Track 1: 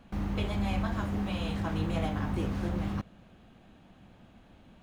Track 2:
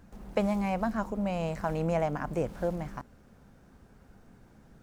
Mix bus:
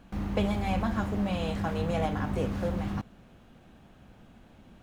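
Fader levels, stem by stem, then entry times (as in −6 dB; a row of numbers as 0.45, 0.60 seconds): 0.0, −3.0 decibels; 0.00, 0.00 seconds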